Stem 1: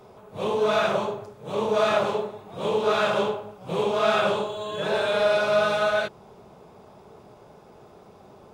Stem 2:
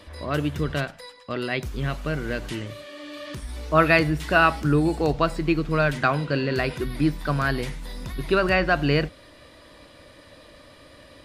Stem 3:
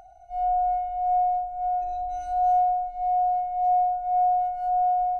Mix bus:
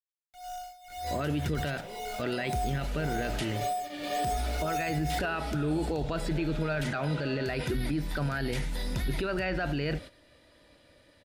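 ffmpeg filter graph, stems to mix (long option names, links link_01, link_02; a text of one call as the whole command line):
ffmpeg -i stem1.wav -i stem2.wav -i stem3.wav -filter_complex "[0:a]acompressor=threshold=-33dB:ratio=2.5,adelay=1450,volume=-12dB[link_01];[1:a]agate=range=-13dB:threshold=-38dB:ratio=16:detection=peak,acompressor=threshold=-22dB:ratio=6,adelay=900,volume=-5.5dB[link_02];[2:a]acrusher=bits=4:mix=0:aa=0.000001,tremolo=f=1.9:d=0.82,volume=-9dB,afade=type=in:start_time=4.15:duration=0.41:silence=0.375837[link_03];[link_02][link_03]amix=inputs=2:normalize=0,dynaudnorm=framelen=160:gausssize=11:maxgain=8dB,alimiter=limit=-22.5dB:level=0:latency=1:release=14,volume=0dB[link_04];[link_01][link_04]amix=inputs=2:normalize=0,bandreject=frequency=1100:width=5.1" out.wav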